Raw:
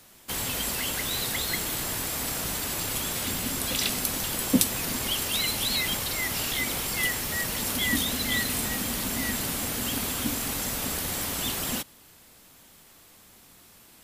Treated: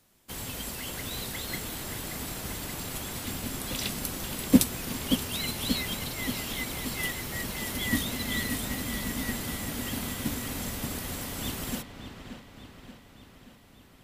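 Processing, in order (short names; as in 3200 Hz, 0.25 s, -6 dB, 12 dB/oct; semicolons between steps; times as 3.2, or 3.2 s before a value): low shelf 420 Hz +6 dB; on a send: dark delay 0.579 s, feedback 69%, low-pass 3600 Hz, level -6 dB; on the sum: upward expander 1.5:1, over -38 dBFS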